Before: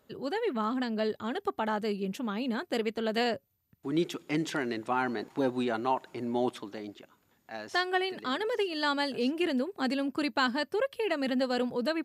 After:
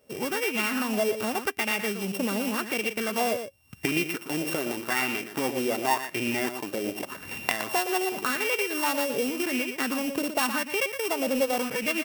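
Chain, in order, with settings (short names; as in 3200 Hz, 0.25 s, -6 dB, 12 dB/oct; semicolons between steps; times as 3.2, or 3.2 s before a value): sample sorter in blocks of 16 samples; recorder AGC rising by 44 dB/s; short-mantissa float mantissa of 2-bit; high shelf 8000 Hz +7.5 dB; on a send: echo 0.118 s -9 dB; on the sum: LFO bell 0.88 Hz 510–2500 Hz +10 dB; gain -2 dB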